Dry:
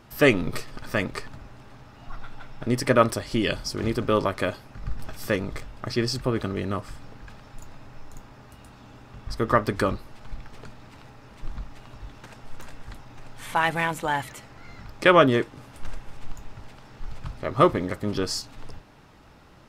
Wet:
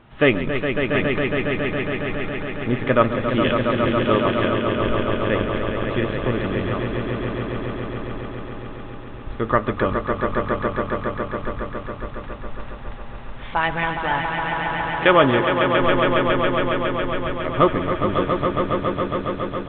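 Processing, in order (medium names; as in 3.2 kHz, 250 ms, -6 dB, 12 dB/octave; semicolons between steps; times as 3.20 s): echo with a slow build-up 138 ms, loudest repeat 5, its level -7 dB; 3.28–4.46 s: word length cut 6-bit, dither triangular; resampled via 8 kHz; trim +1.5 dB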